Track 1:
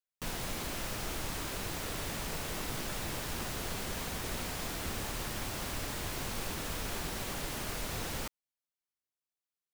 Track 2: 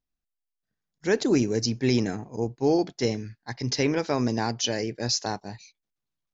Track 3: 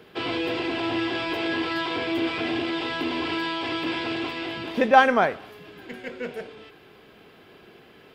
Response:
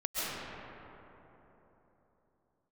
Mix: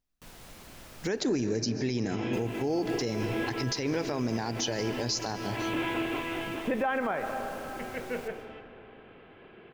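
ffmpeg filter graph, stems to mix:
-filter_complex "[0:a]volume=0.2,asplit=3[s0][s1][s2];[s0]atrim=end=1.08,asetpts=PTS-STARTPTS,afade=t=out:st=1.076:d=0.004:c=hsin[s3];[s1]atrim=start=1.08:end=2.33,asetpts=PTS-STARTPTS,volume=0[s4];[s2]atrim=start=2.33,asetpts=PTS-STARTPTS,afade=t=in:d=0.004:c=hsin[s5];[s3][s4][s5]concat=n=3:v=0:a=1,asplit=2[s6][s7];[s7]volume=0.316[s8];[1:a]volume=1.33,asplit=3[s9][s10][s11];[s10]volume=0.106[s12];[2:a]lowpass=f=2900:w=0.5412,lowpass=f=2900:w=1.3066,adelay=1900,volume=0.75,asplit=2[s13][s14];[s14]volume=0.0841[s15];[s11]apad=whole_len=443156[s16];[s13][s16]sidechaincompress=threshold=0.0251:ratio=3:attack=16:release=469[s17];[3:a]atrim=start_sample=2205[s18];[s8][s12][s15]amix=inputs=3:normalize=0[s19];[s19][s18]afir=irnorm=-1:irlink=0[s20];[s6][s9][s17][s20]amix=inputs=4:normalize=0,alimiter=limit=0.0944:level=0:latency=1:release=110"

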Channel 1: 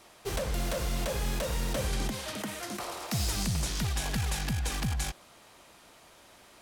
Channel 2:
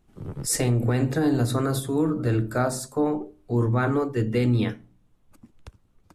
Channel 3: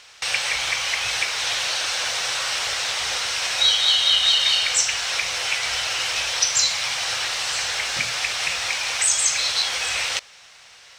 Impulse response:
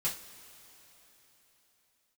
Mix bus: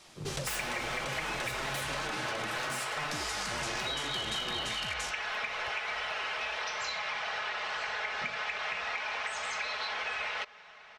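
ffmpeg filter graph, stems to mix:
-filter_complex "[0:a]lowpass=6400,highshelf=f=3000:g=11.5,volume=0.668[s0];[1:a]aeval=exprs='0.0501*(abs(mod(val(0)/0.0501+3,4)-2)-1)':c=same,volume=0.708,asplit=2[s1][s2];[s2]volume=0.447[s3];[2:a]lowpass=1700,aecho=1:1:4.7:0.59,asoftclip=type=tanh:threshold=0.168,adelay=250,volume=1.12[s4];[3:a]atrim=start_sample=2205[s5];[s3][s5]afir=irnorm=-1:irlink=0[s6];[s0][s1][s4][s6]amix=inputs=4:normalize=0,lowshelf=f=210:g=-9.5,acompressor=threshold=0.0251:ratio=6"

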